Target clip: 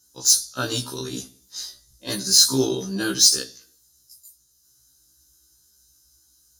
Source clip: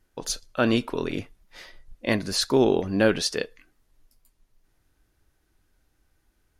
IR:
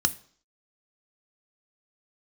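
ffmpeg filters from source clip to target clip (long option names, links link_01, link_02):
-filter_complex "[1:a]atrim=start_sample=2205,asetrate=43218,aresample=44100[link_01];[0:a][link_01]afir=irnorm=-1:irlink=0,aexciter=amount=5.9:drive=9.9:freq=3800,afftfilt=real='re*1.73*eq(mod(b,3),0)':imag='im*1.73*eq(mod(b,3),0)':win_size=2048:overlap=0.75,volume=-12dB"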